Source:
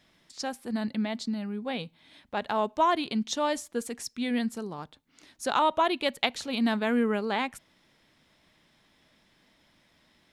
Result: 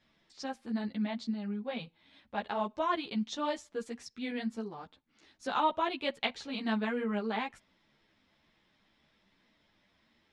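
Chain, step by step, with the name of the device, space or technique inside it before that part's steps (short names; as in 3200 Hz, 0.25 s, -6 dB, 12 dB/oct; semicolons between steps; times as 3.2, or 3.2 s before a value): string-machine ensemble chorus (ensemble effect; LPF 5000 Hz 12 dB/oct); gain -2.5 dB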